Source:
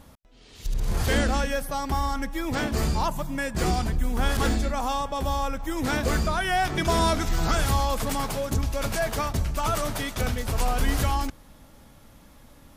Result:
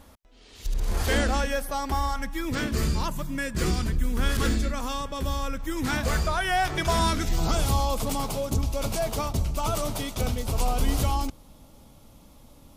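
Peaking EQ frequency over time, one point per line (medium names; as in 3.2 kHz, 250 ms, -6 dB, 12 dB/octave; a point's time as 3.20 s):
peaking EQ -12 dB 0.61 oct
1.96 s 140 Hz
2.45 s 770 Hz
5.75 s 770 Hz
6.26 s 220 Hz
6.81 s 220 Hz
7.39 s 1.7 kHz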